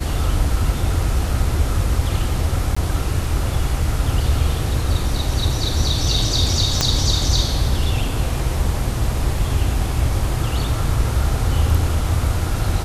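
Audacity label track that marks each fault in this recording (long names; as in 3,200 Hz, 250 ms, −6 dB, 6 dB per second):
2.750000	2.770000	drop-out 15 ms
6.810000	6.810000	click −2 dBFS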